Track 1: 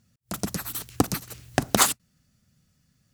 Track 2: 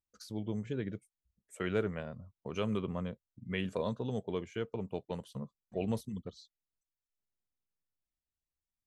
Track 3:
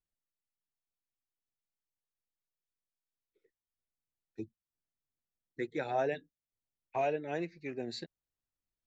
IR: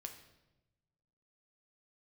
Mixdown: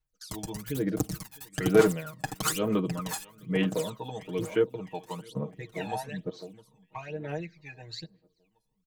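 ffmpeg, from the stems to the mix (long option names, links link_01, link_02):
-filter_complex "[0:a]aeval=exprs='val(0)*gte(abs(val(0)),0.0422)':channel_layout=same,volume=-8.5dB,asplit=3[link_01][link_02][link_03];[link_02]volume=-18.5dB[link_04];[link_03]volume=-7dB[link_05];[1:a]highpass=210,agate=range=-19dB:threshold=-56dB:ratio=16:detection=peak,volume=0dB,asplit=3[link_06][link_07][link_08];[link_07]volume=-19.5dB[link_09];[2:a]equalizer=frequency=270:width=0.74:gain=-11.5,volume=-3.5dB,asplit=2[link_10][link_11];[link_11]volume=-18dB[link_12];[link_08]apad=whole_len=138418[link_13];[link_01][link_13]sidechaincompress=threshold=-38dB:ratio=8:attack=16:release=287[link_14];[link_14][link_10]amix=inputs=2:normalize=0,equalizer=frequency=71:width_type=o:width=1.3:gain=14.5,acompressor=threshold=-39dB:ratio=6,volume=0dB[link_15];[3:a]atrim=start_sample=2205[link_16];[link_04][link_12]amix=inputs=2:normalize=0[link_17];[link_17][link_16]afir=irnorm=-1:irlink=0[link_18];[link_05][link_09]amix=inputs=2:normalize=0,aecho=0:1:658|1316|1974|2632|3290|3948|4606:1|0.49|0.24|0.118|0.0576|0.0282|0.0138[link_19];[link_06][link_15][link_18][link_19]amix=inputs=4:normalize=0,aecho=1:1:6.4:0.92,aphaser=in_gain=1:out_gain=1:delay=1.2:decay=0.71:speed=1.1:type=sinusoidal"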